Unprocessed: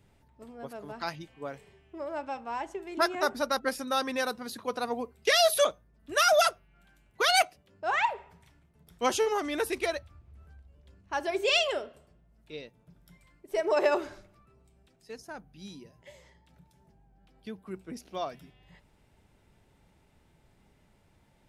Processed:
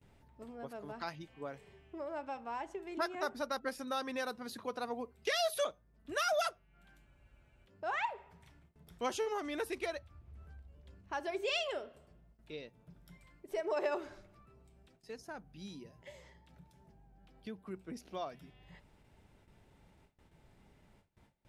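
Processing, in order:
high-shelf EQ 5,100 Hz −4.5 dB
noise gate with hold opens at −55 dBFS
downward compressor 1.5 to 1, threshold −48 dBFS, peak gain reduction 10.5 dB
frozen spectrum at 0:07.08, 0.57 s

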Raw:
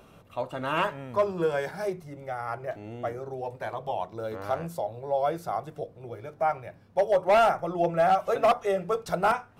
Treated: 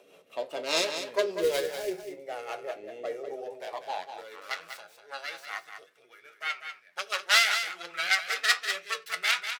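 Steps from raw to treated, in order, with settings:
stylus tracing distortion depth 0.47 ms
dynamic equaliser 4,400 Hz, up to +7 dB, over −45 dBFS, Q 1.1
high-pass filter sweep 560 Hz → 1,400 Hz, 0:03.28–0:04.80
0:01.37–0:02.12: floating-point word with a short mantissa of 2 bits
flanger 1.7 Hz, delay 10 ms, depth 1.9 ms, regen +60%
rotating-speaker cabinet horn 5 Hz
flat-topped bell 910 Hz −9.5 dB
single-tap delay 194 ms −8.5 dB
on a send at −14 dB: convolution reverb, pre-delay 5 ms
on the sum: level +6.5 dB

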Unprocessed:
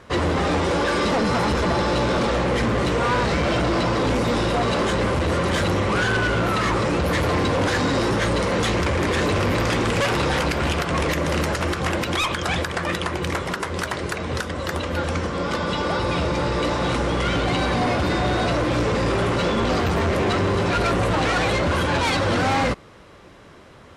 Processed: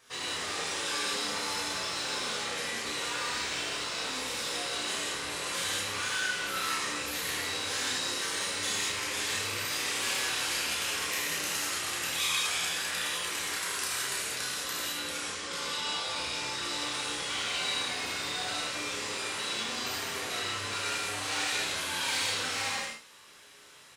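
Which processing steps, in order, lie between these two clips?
flanger 0.1 Hz, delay 7.6 ms, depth 9.7 ms, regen +53%
downward compressor 4 to 1, threshold −27 dBFS, peak gain reduction 5.5 dB
first-order pre-emphasis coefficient 0.97
ambience of single reflections 31 ms −5 dB, 80 ms −10 dB
reverb whose tail is shaped and stops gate 240 ms flat, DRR −7.5 dB
level +2 dB

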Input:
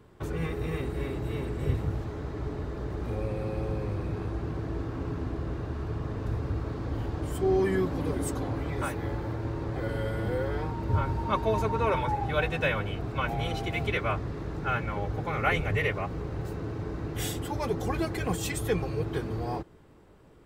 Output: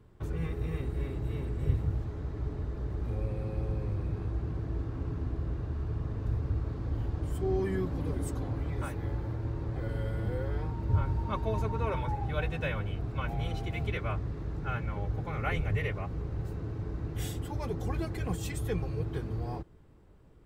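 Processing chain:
low-shelf EQ 150 Hz +11.5 dB
level −8 dB

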